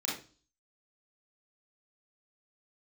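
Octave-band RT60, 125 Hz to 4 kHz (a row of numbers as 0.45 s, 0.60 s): 0.50 s, 0.50 s, 0.40 s, 0.35 s, 0.35 s, 0.40 s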